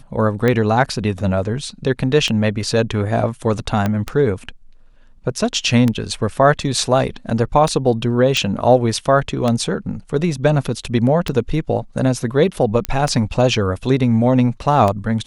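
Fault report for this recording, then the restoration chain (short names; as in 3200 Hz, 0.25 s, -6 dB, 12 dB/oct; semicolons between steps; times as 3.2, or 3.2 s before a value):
tick 33 1/3 rpm -6 dBFS
3.86 pop -7 dBFS
8.37 pop
12.85 pop -5 dBFS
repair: de-click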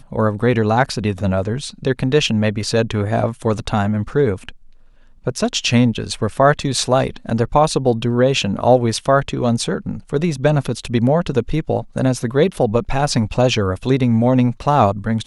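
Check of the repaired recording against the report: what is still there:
3.86 pop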